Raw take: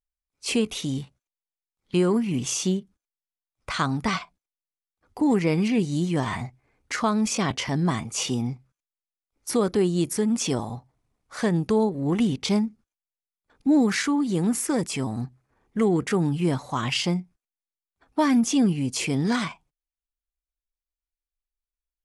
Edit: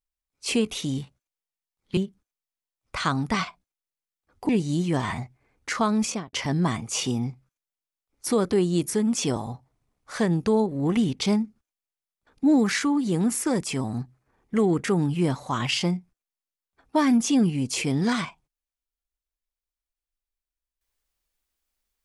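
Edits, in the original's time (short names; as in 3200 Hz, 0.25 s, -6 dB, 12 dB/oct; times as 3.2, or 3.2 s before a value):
1.97–2.71 cut
5.23–5.72 cut
7.27–7.56 studio fade out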